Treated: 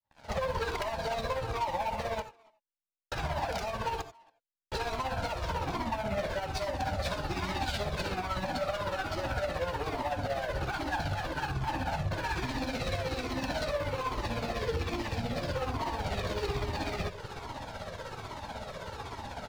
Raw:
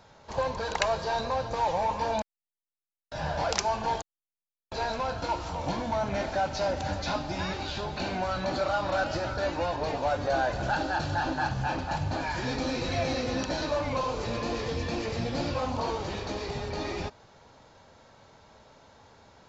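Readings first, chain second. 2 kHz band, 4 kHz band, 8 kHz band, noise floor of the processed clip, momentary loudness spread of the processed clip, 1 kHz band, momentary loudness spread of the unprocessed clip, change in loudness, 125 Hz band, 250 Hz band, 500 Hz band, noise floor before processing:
-2.5 dB, -2.5 dB, n/a, -74 dBFS, 8 LU, -4.0 dB, 6 LU, -3.5 dB, -1.0 dB, -4.0 dB, -4.0 dB, under -85 dBFS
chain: opening faded in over 0.61 s; LPF 4500 Hz 12 dB/oct; compressor 16:1, threshold -39 dBFS, peak gain reduction 18 dB; sample leveller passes 5; tremolo 16 Hz, depth 56%; speakerphone echo 0.28 s, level -22 dB; non-linear reverb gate 0.11 s rising, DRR 11 dB; cascading flanger falling 1.2 Hz; gain +3 dB

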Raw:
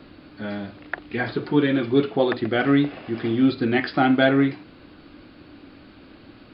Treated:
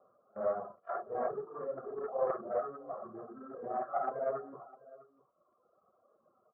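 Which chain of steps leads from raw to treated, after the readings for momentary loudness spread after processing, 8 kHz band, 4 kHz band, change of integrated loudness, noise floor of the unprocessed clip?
16 LU, n/a, under -40 dB, -16.0 dB, -48 dBFS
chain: phase scrambler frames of 0.2 s; steep low-pass 1400 Hz 96 dB/oct; reverse; compressor 16:1, threshold -29 dBFS, peak gain reduction 16 dB; reverse; gate -40 dBFS, range -16 dB; reverb removal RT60 1.8 s; HPF 420 Hz 12 dB/oct; bell 720 Hz +2.5 dB; comb 1.7 ms, depth 95%; echo 0.655 s -20 dB; Doppler distortion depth 0.14 ms

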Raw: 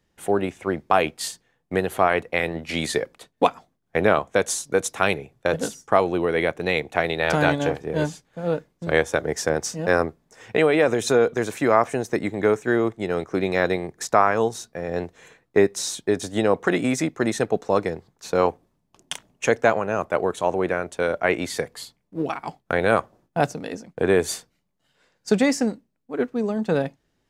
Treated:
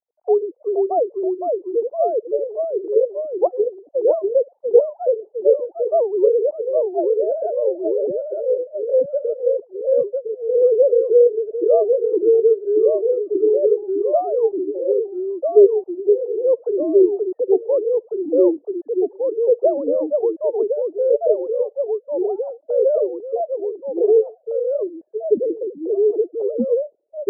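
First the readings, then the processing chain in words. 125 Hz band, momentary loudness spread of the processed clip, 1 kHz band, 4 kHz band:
under -25 dB, 8 LU, -5.5 dB, under -40 dB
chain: sine-wave speech; steep low-pass 660 Hz 36 dB/oct; echoes that change speed 0.458 s, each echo -1 st, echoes 2; gain +3.5 dB

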